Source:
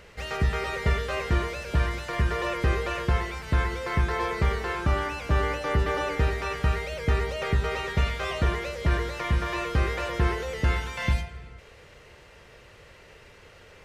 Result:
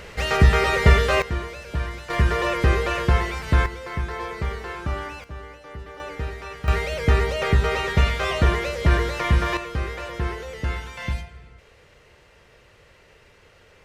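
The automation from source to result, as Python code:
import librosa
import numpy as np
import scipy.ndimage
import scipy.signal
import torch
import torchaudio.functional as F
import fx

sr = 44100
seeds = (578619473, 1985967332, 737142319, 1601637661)

y = fx.gain(x, sr, db=fx.steps((0.0, 10.0), (1.22, -2.5), (2.1, 5.5), (3.66, -3.0), (5.24, -13.5), (6.0, -5.5), (6.68, 6.0), (9.57, -2.5)))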